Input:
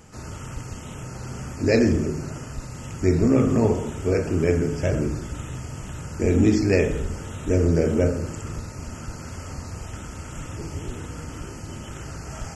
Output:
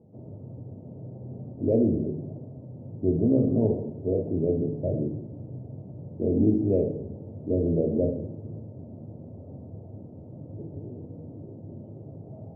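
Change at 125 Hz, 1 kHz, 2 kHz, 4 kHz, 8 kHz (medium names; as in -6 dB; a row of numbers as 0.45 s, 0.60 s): -5.5 dB, -14.0 dB, under -40 dB, under -40 dB, under -40 dB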